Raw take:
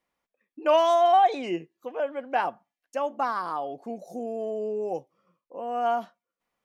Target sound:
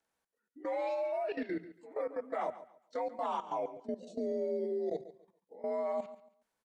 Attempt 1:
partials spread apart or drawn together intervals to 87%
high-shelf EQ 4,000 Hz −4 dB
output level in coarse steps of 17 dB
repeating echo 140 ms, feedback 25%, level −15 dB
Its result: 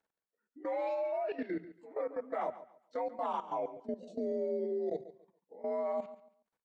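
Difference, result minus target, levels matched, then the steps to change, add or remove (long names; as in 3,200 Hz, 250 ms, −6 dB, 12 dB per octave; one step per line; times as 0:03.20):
4,000 Hz band −4.0 dB
change: high-shelf EQ 4,000 Hz +5.5 dB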